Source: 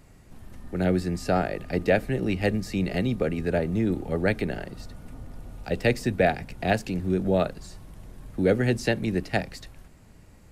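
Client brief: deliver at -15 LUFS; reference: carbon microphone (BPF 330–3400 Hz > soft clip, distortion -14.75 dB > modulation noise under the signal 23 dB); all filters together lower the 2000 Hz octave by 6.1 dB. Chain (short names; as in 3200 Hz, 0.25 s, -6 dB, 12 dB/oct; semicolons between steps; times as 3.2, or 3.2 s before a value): BPF 330–3400 Hz; bell 2000 Hz -7 dB; soft clip -18.5 dBFS; modulation noise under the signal 23 dB; gain +16.5 dB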